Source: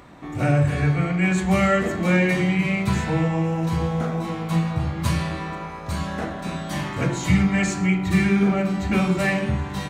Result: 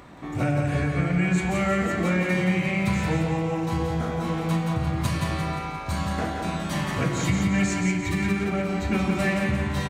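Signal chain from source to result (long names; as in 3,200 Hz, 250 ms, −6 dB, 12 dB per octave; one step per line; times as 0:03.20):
downward compressor, threshold −21 dBFS, peak gain reduction 8.5 dB
on a send: repeating echo 174 ms, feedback 49%, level −5 dB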